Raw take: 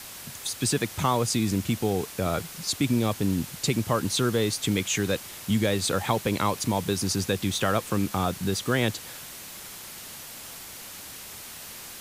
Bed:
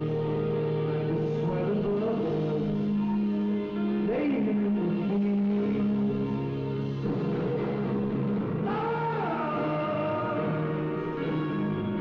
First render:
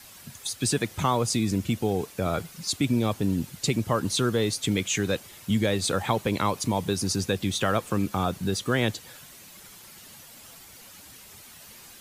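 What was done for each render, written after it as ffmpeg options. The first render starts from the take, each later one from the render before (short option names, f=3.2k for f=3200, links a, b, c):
-af "afftdn=nr=9:nf=-42"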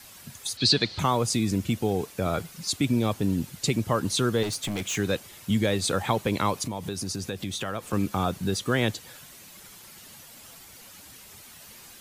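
-filter_complex "[0:a]asettb=1/sr,asplit=3[a][b][c];[a]atrim=end=0.574[d];[b]atrim=start=0.57:end=0.99,asetpts=PTS-STARTPTS,afade=t=in:d=0.004:c=qsin,afade=t=out:st=0.416:d=0.004:c=qsin,lowpass=f=4.3k:t=q:w=11[e];[c]atrim=start=0.986[f];[d][e]acrossfade=d=0.004:c1=hsin:c2=qsin[g];[g][f]acrossfade=d=0.004:c1=qsin:c2=hsin,asettb=1/sr,asplit=3[h][i][j];[h]atrim=end=4.434[k];[i]atrim=start=4.43:end=4.98,asetpts=PTS-STARTPTS,afade=t=in:d=0.004:c=qsin,afade=t=out:st=0.546:d=0.004:c=qsin,asoftclip=type=hard:threshold=-26.5dB[l];[j]atrim=start=4.976[m];[k][l]acrossfade=d=0.004:c1=hsin:c2=qsin[n];[n][m]acrossfade=d=0.004:c1=qsin:c2=hsin,asettb=1/sr,asplit=3[o][p][q];[o]atrim=end=6.634[r];[p]atrim=start=6.63:end=7.93,asetpts=PTS-STARTPTS,afade=t=in:d=0.004:c=qsin,afade=t=out:st=1.296:d=0.004:c=qsin,acompressor=threshold=-29dB:ratio=3:attack=3.2:release=140:knee=1:detection=peak[s];[q]atrim=start=7.926[t];[r][s]acrossfade=d=0.004:c1=hsin:c2=qsin[u];[u][t]acrossfade=d=0.004:c1=qsin:c2=hsin"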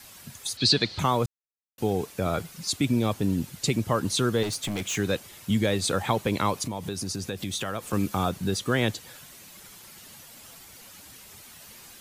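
-filter_complex "[0:a]asettb=1/sr,asplit=3[a][b][c];[a]atrim=end=7.374[d];[b]atrim=start=7.37:end=8.29,asetpts=PTS-STARTPTS,afade=t=in:d=0.004:c=qsin,afade=t=out:st=0.916:d=0.004:c=qsin,highshelf=f=5.2k:g=4[e];[c]atrim=start=8.286[f];[d][e]acrossfade=d=0.004:c1=hsin:c2=qsin[g];[g][f]acrossfade=d=0.004:c1=qsin:c2=hsin,asplit=3[h][i][j];[h]atrim=end=1.26,asetpts=PTS-STARTPTS,afade=t=out:st=1.256:d=0.004:c=hsin[k];[i]atrim=start=1.26:end=1.78,asetpts=PTS-STARTPTS,volume=0[l];[j]atrim=start=1.78,asetpts=PTS-STARTPTS,afade=t=in:d=0.004:c=hsin[m];[k][l][m]concat=n=3:v=0:a=1"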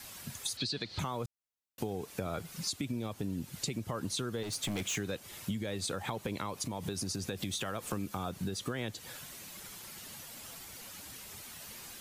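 -af "alimiter=limit=-16.5dB:level=0:latency=1:release=154,acompressor=threshold=-33dB:ratio=6"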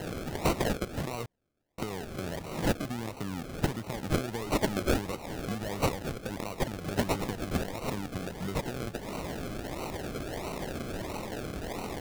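-af "aexciter=amount=2.7:drive=5.5:freq=2.6k,acrusher=samples=37:mix=1:aa=0.000001:lfo=1:lforange=22.2:lforate=1.5"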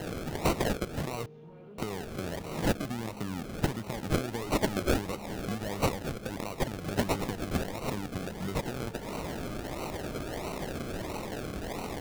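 -filter_complex "[1:a]volume=-22dB[a];[0:a][a]amix=inputs=2:normalize=0"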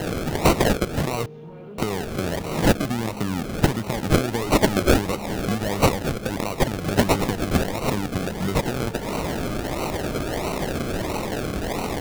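-af "volume=10dB"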